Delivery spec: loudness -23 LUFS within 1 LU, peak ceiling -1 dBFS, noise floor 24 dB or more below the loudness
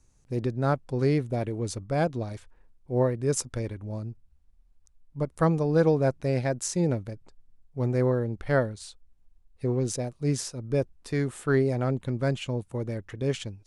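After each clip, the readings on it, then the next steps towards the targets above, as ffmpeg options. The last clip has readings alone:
loudness -28.0 LUFS; peak level -11.0 dBFS; loudness target -23.0 LUFS
-> -af "volume=1.78"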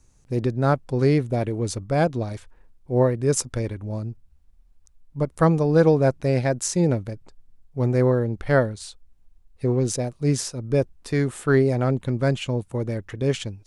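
loudness -23.0 LUFS; peak level -6.0 dBFS; noise floor -57 dBFS

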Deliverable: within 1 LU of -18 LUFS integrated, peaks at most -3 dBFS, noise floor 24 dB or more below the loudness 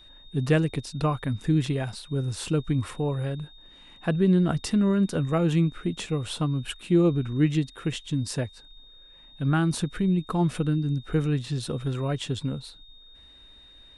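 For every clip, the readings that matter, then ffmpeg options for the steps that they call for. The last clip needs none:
steady tone 3.7 kHz; tone level -50 dBFS; loudness -26.5 LUFS; peak level -10.5 dBFS; loudness target -18.0 LUFS
-> -af "bandreject=f=3700:w=30"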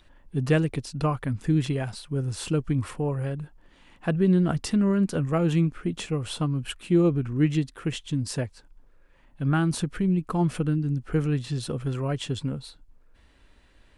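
steady tone not found; loudness -26.5 LUFS; peak level -10.5 dBFS; loudness target -18.0 LUFS
-> -af "volume=2.66,alimiter=limit=0.708:level=0:latency=1"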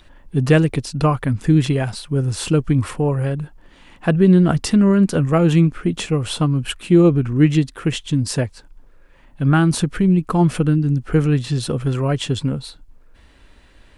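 loudness -18.0 LUFS; peak level -3.0 dBFS; noise floor -49 dBFS

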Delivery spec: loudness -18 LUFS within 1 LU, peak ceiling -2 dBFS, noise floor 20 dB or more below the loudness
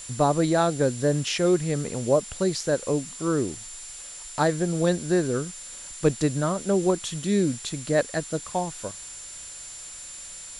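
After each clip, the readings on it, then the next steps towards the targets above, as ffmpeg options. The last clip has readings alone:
steady tone 7.2 kHz; tone level -40 dBFS; noise floor -41 dBFS; noise floor target -45 dBFS; loudness -25.0 LUFS; peak level -8.0 dBFS; loudness target -18.0 LUFS
-> -af "bandreject=f=7200:w=30"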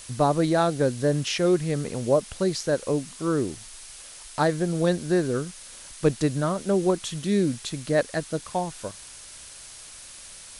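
steady tone not found; noise floor -44 dBFS; noise floor target -45 dBFS
-> -af "afftdn=nr=6:nf=-44"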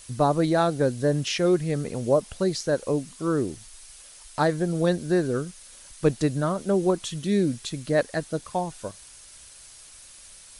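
noise floor -48 dBFS; loudness -25.5 LUFS; peak level -8.5 dBFS; loudness target -18.0 LUFS
-> -af "volume=2.37,alimiter=limit=0.794:level=0:latency=1"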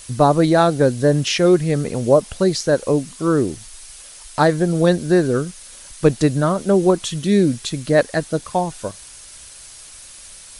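loudness -18.0 LUFS; peak level -2.0 dBFS; noise floor -41 dBFS

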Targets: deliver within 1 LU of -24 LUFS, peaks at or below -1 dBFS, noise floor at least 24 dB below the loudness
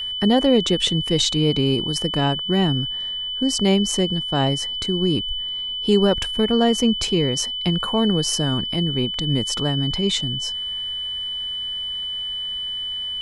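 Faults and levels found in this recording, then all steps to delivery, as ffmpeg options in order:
steady tone 3 kHz; tone level -25 dBFS; loudness -21.0 LUFS; peak level -5.0 dBFS; loudness target -24.0 LUFS
-> -af "bandreject=f=3000:w=30"
-af "volume=0.708"

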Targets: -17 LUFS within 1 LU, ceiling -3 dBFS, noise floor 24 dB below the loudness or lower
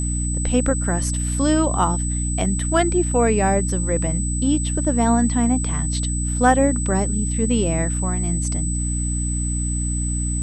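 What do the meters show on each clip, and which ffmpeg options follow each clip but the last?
hum 60 Hz; highest harmonic 300 Hz; hum level -21 dBFS; steady tone 8 kHz; tone level -27 dBFS; loudness -20.5 LUFS; peak level -3.5 dBFS; loudness target -17.0 LUFS
-> -af "bandreject=f=60:t=h:w=6,bandreject=f=120:t=h:w=6,bandreject=f=180:t=h:w=6,bandreject=f=240:t=h:w=6,bandreject=f=300:t=h:w=6"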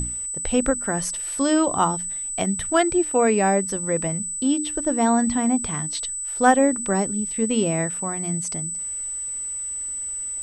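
hum not found; steady tone 8 kHz; tone level -27 dBFS
-> -af "bandreject=f=8000:w=30"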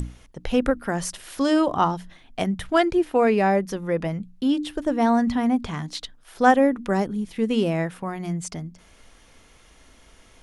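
steady tone not found; loudness -23.0 LUFS; peak level -4.5 dBFS; loudness target -17.0 LUFS
-> -af "volume=2,alimiter=limit=0.708:level=0:latency=1"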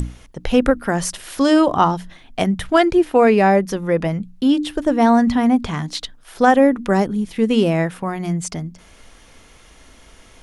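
loudness -17.5 LUFS; peak level -3.0 dBFS; noise floor -48 dBFS

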